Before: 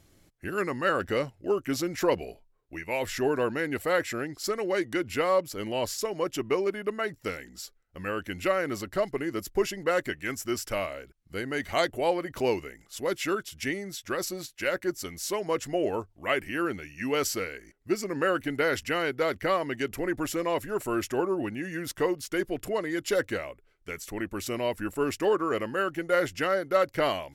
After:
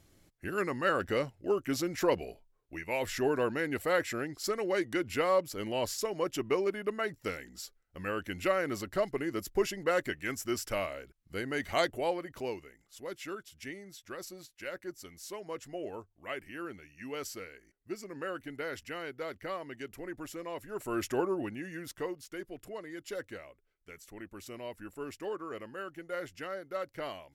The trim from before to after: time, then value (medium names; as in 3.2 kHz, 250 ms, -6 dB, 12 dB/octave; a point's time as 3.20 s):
11.85 s -3 dB
12.60 s -12 dB
20.59 s -12 dB
21.09 s -2 dB
22.40 s -13 dB